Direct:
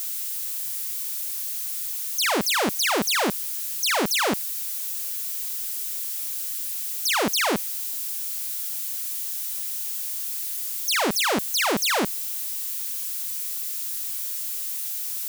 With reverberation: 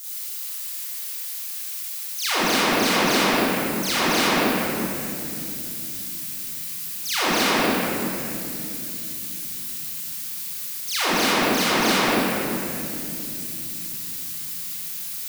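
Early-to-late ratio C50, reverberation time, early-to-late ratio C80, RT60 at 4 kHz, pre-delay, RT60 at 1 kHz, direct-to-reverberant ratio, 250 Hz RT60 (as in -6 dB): -8.0 dB, 2.9 s, -4.5 dB, 1.8 s, 27 ms, 2.4 s, -12.0 dB, 5.5 s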